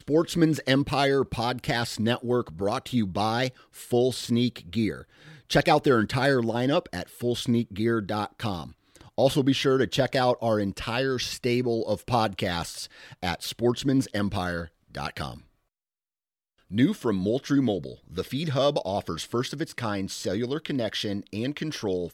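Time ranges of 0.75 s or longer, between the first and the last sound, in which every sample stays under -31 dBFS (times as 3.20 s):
15.34–16.72 s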